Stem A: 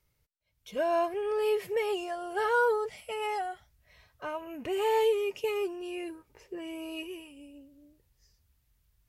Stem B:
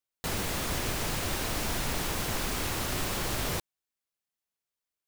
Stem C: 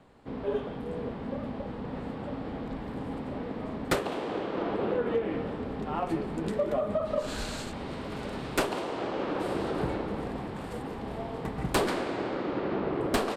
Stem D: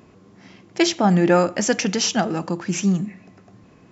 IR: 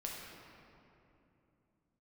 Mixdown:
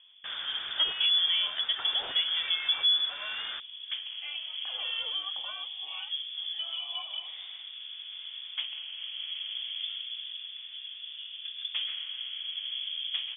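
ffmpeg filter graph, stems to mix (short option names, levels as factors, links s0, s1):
-filter_complex "[0:a]highpass=840,alimiter=level_in=1.68:limit=0.0631:level=0:latency=1,volume=0.596,volume=0.631[s0];[1:a]equalizer=f=2100:w=2.6:g=13.5,volume=0.211[s1];[2:a]lowpass=f=2400:w=0.5412,lowpass=f=2400:w=1.3066,volume=0.188[s2];[3:a]dynaudnorm=f=280:g=5:m=3.76,highshelf=f=4300:g=9,volume=0.126,asplit=2[s3][s4];[s4]apad=whole_len=589219[s5];[s2][s5]sidechaincompress=threshold=0.00794:ratio=8:attack=16:release=981[s6];[s1][s6][s3]amix=inputs=3:normalize=0,equalizer=f=230:t=o:w=2.7:g=11.5,alimiter=limit=0.126:level=0:latency=1:release=464,volume=1[s7];[s0][s7]amix=inputs=2:normalize=0,lowpass=f=3100:t=q:w=0.5098,lowpass=f=3100:t=q:w=0.6013,lowpass=f=3100:t=q:w=0.9,lowpass=f=3100:t=q:w=2.563,afreqshift=-3600"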